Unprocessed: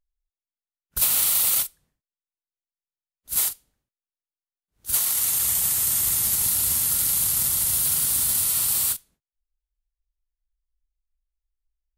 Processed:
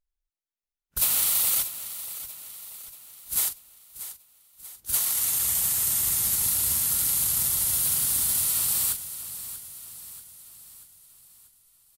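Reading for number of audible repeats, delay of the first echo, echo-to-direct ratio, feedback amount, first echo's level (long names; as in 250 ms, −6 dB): 4, 636 ms, −11.5 dB, 52%, −13.0 dB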